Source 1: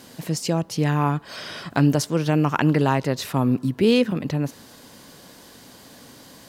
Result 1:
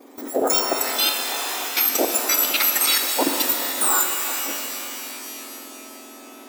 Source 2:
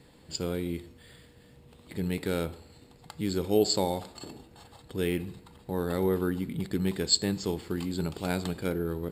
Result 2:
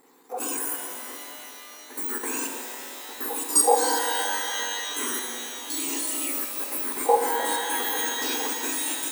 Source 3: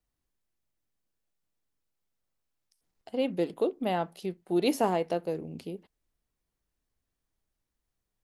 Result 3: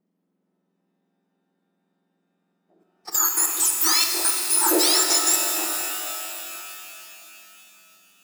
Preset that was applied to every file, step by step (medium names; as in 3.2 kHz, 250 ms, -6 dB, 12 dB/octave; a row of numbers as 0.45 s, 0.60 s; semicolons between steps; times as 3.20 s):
spectrum inverted on a logarithmic axis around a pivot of 1.9 kHz; gate -54 dBFS, range -8 dB; level held to a coarse grid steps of 14 dB; pitch-shifted reverb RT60 3.4 s, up +12 st, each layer -2 dB, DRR 3.5 dB; peak normalisation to -6 dBFS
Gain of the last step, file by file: +8.5 dB, +11.5 dB, +22.0 dB